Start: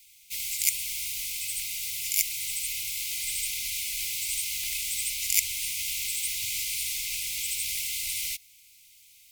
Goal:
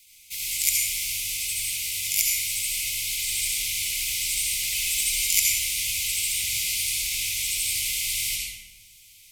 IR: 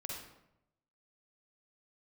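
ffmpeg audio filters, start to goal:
-filter_complex "[0:a]asettb=1/sr,asplit=3[link_01][link_02][link_03];[link_01]atrim=end=4.764[link_04];[link_02]atrim=start=4.76:end=5.33,asetpts=PTS-STARTPTS,afade=type=in:duration=0.004:curve=qsin,afade=type=out:start_time=0.566:duration=0.004:curve=qsin,aecho=1:1:4.7:0.65,atrim=end_sample=25137[link_05];[link_03]atrim=start=5.326[link_06];[link_04][link_05]acrossfade=duration=0.004:curve1=hsin:curve2=qsin[link_07];[link_07][link_06]acrossfade=duration=0.004:curve1=qsin:curve2=hsin[link_08];[1:a]atrim=start_sample=2205,asetrate=27783,aresample=44100[link_09];[link_08][link_09]afir=irnorm=-1:irlink=0,volume=4dB"

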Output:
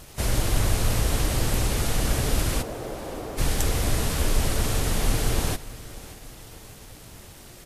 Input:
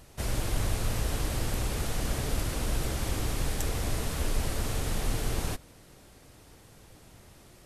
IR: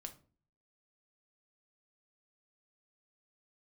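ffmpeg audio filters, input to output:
-filter_complex "[0:a]asplit=3[link_01][link_02][link_03];[link_01]afade=type=out:start_time=2.61:duration=0.02[link_04];[link_02]bandpass=frequency=550:width_type=q:width=1.2:csg=0,afade=type=in:start_time=2.61:duration=0.02,afade=type=out:start_time=3.37:duration=0.02[link_05];[link_03]afade=type=in:start_time=3.37:duration=0.02[link_06];[link_04][link_05][link_06]amix=inputs=3:normalize=0,acrusher=bits=8:mix=0:aa=0.000001,aecho=1:1:591|1182|1773|2364:0.119|0.063|0.0334|0.0177,volume=6.5dB" -ar 44100 -c:a libvorbis -b:a 48k

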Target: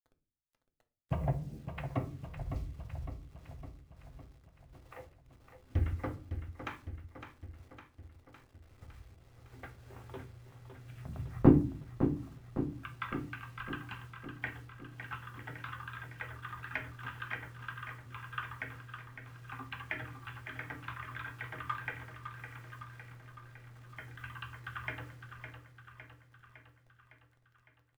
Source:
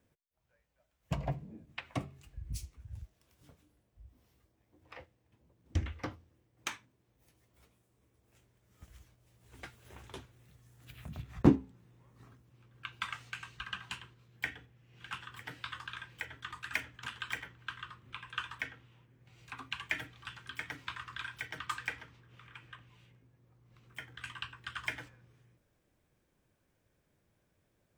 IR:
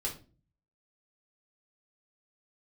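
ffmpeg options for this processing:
-filter_complex "[0:a]lowpass=1700,acrusher=bits=10:mix=0:aa=0.000001,aecho=1:1:558|1116|1674|2232|2790|3348|3906:0.355|0.213|0.128|0.0766|0.046|0.0276|0.0166,asplit=2[link_01][link_02];[1:a]atrim=start_sample=2205,lowshelf=frequency=83:gain=7.5[link_03];[link_02][link_03]afir=irnorm=-1:irlink=0,volume=-5.5dB[link_04];[link_01][link_04]amix=inputs=2:normalize=0,volume=-1.5dB"

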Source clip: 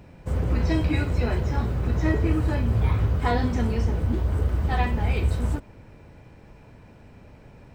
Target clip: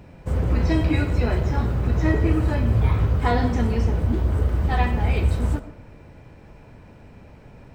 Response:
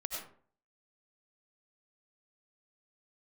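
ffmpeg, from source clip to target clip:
-filter_complex "[0:a]asplit=2[link_01][link_02];[link_02]highshelf=frequency=4700:gain=-11.5[link_03];[1:a]atrim=start_sample=2205[link_04];[link_03][link_04]afir=irnorm=-1:irlink=0,volume=-7dB[link_05];[link_01][link_05]amix=inputs=2:normalize=0"

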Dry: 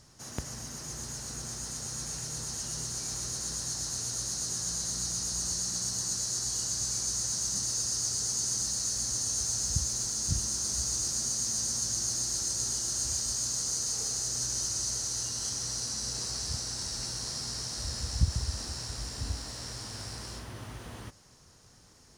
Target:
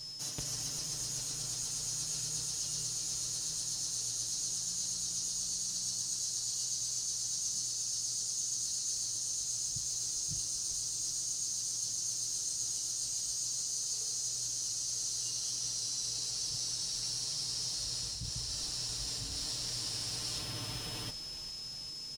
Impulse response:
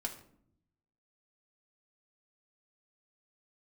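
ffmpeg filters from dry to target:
-filter_complex "[0:a]aeval=exprs='val(0)+0.00251*sin(2*PI*5200*n/s)':channel_layout=same,highshelf=frequency=2300:width_type=q:width=1.5:gain=7.5,areverse,acompressor=threshold=-35dB:ratio=8,areverse,aecho=1:1:6.7:0.94,asplit=8[link_01][link_02][link_03][link_04][link_05][link_06][link_07][link_08];[link_02]adelay=396,afreqshift=-87,volume=-13dB[link_09];[link_03]adelay=792,afreqshift=-174,volume=-16.9dB[link_10];[link_04]adelay=1188,afreqshift=-261,volume=-20.8dB[link_11];[link_05]adelay=1584,afreqshift=-348,volume=-24.6dB[link_12];[link_06]adelay=1980,afreqshift=-435,volume=-28.5dB[link_13];[link_07]adelay=2376,afreqshift=-522,volume=-32.4dB[link_14];[link_08]adelay=2772,afreqshift=-609,volume=-36.3dB[link_15];[link_01][link_09][link_10][link_11][link_12][link_13][link_14][link_15]amix=inputs=8:normalize=0,volume=-2dB"

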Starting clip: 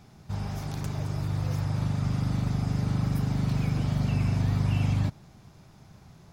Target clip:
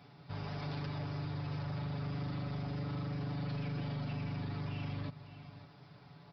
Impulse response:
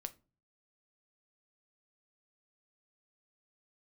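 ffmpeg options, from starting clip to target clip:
-filter_complex "[0:a]asplit=2[link_01][link_02];[link_02]aecho=0:1:558:0.0841[link_03];[link_01][link_03]amix=inputs=2:normalize=0,acompressor=threshold=-28dB:ratio=4,highpass=frequency=51:width=0.5412,highpass=frequency=51:width=1.3066,lowshelf=frequency=150:gain=-10,aresample=11025,asoftclip=type=hard:threshold=-35.5dB,aresample=44100,aecho=1:1:7:0.77,volume=-2.5dB"

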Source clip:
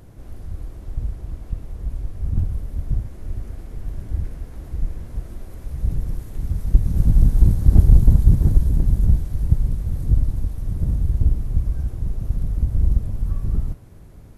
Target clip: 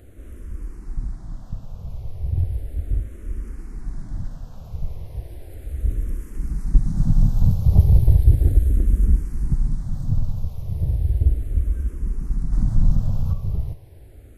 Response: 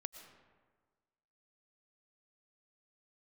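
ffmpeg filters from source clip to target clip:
-filter_complex "[0:a]asettb=1/sr,asplit=3[link_01][link_02][link_03];[link_01]atrim=end=12.524[link_04];[link_02]atrim=start=12.52:end=13.33,asetpts=PTS-STARTPTS,afade=type=in:duration=0.004:curve=qsin,afade=type=out:start_time=0.806:duration=0.004:curve=qsin,acontrast=48[link_05];[link_03]atrim=start=13.326[link_06];[link_04][link_05]acrossfade=duration=0.004:curve1=hsin:curve2=qsin[link_07];[link_07][link_06]acrossfade=duration=0.004:curve1=qsin:curve2=hsin,asplit=2[link_08][link_09];[link_09]afreqshift=-0.35[link_10];[link_08][link_10]amix=inputs=2:normalize=1,volume=1.5dB"

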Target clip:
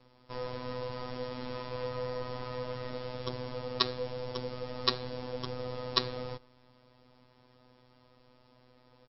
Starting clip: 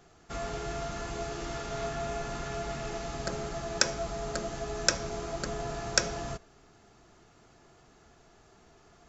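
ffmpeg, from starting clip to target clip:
ffmpeg -i in.wav -af "afftfilt=real='hypot(re,im)*cos(PI*b)':imag='0':win_size=1024:overlap=0.75,asetrate=32097,aresample=44100,atempo=1.37395" out.wav

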